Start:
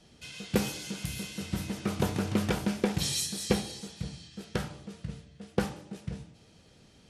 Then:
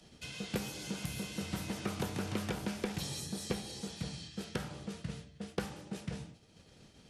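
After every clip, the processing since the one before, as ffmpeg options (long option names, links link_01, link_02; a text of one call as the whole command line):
ffmpeg -i in.wav -filter_complex "[0:a]acrossover=split=110|530|1200[link_01][link_02][link_03][link_04];[link_01]acompressor=threshold=-52dB:ratio=4[link_05];[link_02]acompressor=threshold=-42dB:ratio=4[link_06];[link_03]acompressor=threshold=-50dB:ratio=4[link_07];[link_04]acompressor=threshold=-48dB:ratio=4[link_08];[link_05][link_06][link_07][link_08]amix=inputs=4:normalize=0,agate=range=-33dB:threshold=-49dB:ratio=3:detection=peak,acompressor=mode=upward:threshold=-53dB:ratio=2.5,volume=3.5dB" out.wav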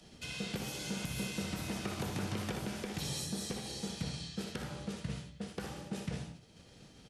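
ffmpeg -i in.wav -filter_complex "[0:a]alimiter=level_in=4.5dB:limit=-24dB:level=0:latency=1:release=129,volume=-4.5dB,asplit=2[link_01][link_02];[link_02]aecho=0:1:61|78:0.398|0.335[link_03];[link_01][link_03]amix=inputs=2:normalize=0,volume=1.5dB" out.wav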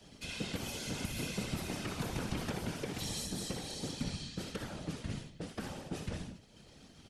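ffmpeg -i in.wav -af "afftfilt=real='hypot(re,im)*cos(2*PI*random(0))':imag='hypot(re,im)*sin(2*PI*random(1))':win_size=512:overlap=0.75,volume=6dB" out.wav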